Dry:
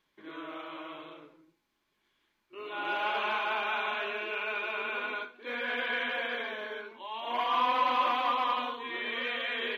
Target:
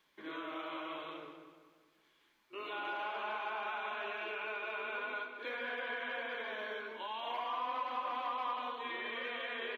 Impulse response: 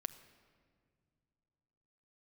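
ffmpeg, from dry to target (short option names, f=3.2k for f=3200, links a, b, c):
-filter_complex "[0:a]lowshelf=f=170:g=-8,bandreject=f=60:t=h:w=6,bandreject=f=120:t=h:w=6,bandreject=f=180:t=h:w=6,bandreject=f=240:t=h:w=6,bandreject=f=300:t=h:w=6,bandreject=f=360:t=h:w=6,bandreject=f=420:t=h:w=6,acrossover=split=550|1600[a][b][c];[c]alimiter=level_in=9.5dB:limit=-24dB:level=0:latency=1:release=446,volume=-9.5dB[d];[a][b][d]amix=inputs=3:normalize=0,acompressor=threshold=-44dB:ratio=3,asplit=2[e][f];[f]adelay=193,lowpass=f=4.3k:p=1,volume=-9.5dB,asplit=2[g][h];[h]adelay=193,lowpass=f=4.3k:p=1,volume=0.48,asplit=2[i][j];[j]adelay=193,lowpass=f=4.3k:p=1,volume=0.48,asplit=2[k][l];[l]adelay=193,lowpass=f=4.3k:p=1,volume=0.48,asplit=2[m][n];[n]adelay=193,lowpass=f=4.3k:p=1,volume=0.48[o];[g][i][k][m][o]amix=inputs=5:normalize=0[p];[e][p]amix=inputs=2:normalize=0,volume=3.5dB"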